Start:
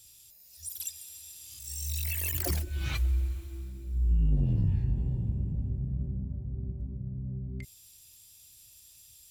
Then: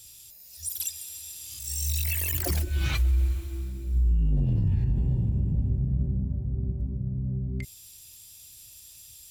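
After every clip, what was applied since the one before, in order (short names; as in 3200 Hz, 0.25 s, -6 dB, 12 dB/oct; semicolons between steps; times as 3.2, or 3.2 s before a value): limiter -24 dBFS, peak gain reduction 6.5 dB; gain +6.5 dB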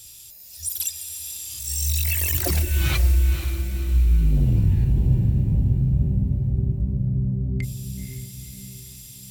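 diffused feedback echo 0.505 s, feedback 48%, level -9 dB; gain +5 dB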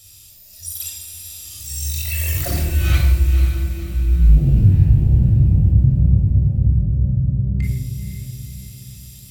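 shoebox room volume 3300 m³, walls furnished, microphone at 6.4 m; gain -4.5 dB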